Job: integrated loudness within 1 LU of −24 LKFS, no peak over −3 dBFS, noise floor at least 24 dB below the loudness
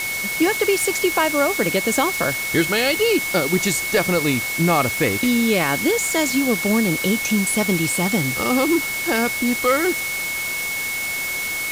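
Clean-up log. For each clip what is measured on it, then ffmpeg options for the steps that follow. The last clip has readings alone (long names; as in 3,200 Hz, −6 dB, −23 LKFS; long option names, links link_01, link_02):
interfering tone 2,200 Hz; level of the tone −24 dBFS; background noise floor −25 dBFS; target noise floor −43 dBFS; integrated loudness −19.0 LKFS; sample peak −6.0 dBFS; target loudness −24.0 LKFS
→ -af "bandreject=frequency=2200:width=30"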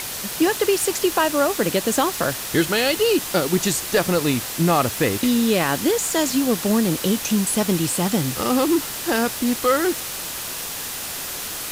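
interfering tone none found; background noise floor −30 dBFS; target noise floor −45 dBFS
→ -af "afftdn=noise_reduction=15:noise_floor=-30"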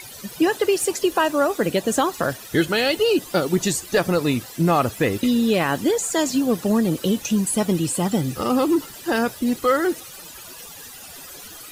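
background noise floor −40 dBFS; target noise floor −45 dBFS
→ -af "afftdn=noise_reduction=6:noise_floor=-40"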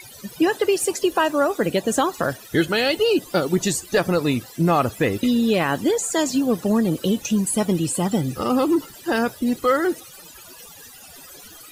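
background noise floor −43 dBFS; target noise floor −45 dBFS
→ -af "afftdn=noise_reduction=6:noise_floor=-43"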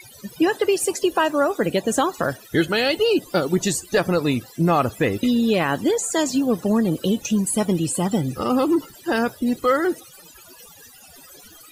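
background noise floor −47 dBFS; integrated loudness −21.0 LKFS; sample peak −8.0 dBFS; target loudness −24.0 LKFS
→ -af "volume=-3dB"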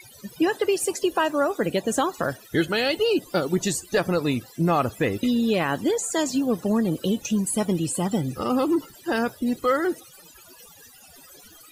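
integrated loudness −24.0 LKFS; sample peak −11.0 dBFS; background noise floor −50 dBFS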